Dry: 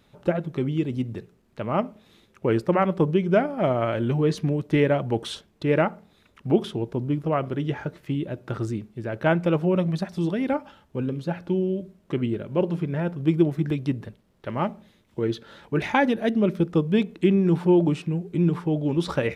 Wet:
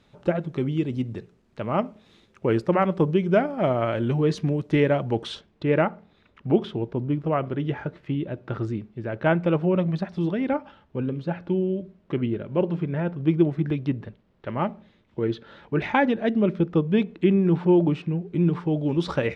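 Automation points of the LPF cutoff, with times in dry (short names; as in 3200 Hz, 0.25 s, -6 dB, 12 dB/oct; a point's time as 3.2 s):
4.97 s 7500 Hz
5.68 s 3500 Hz
18.28 s 3500 Hz
18.81 s 6000 Hz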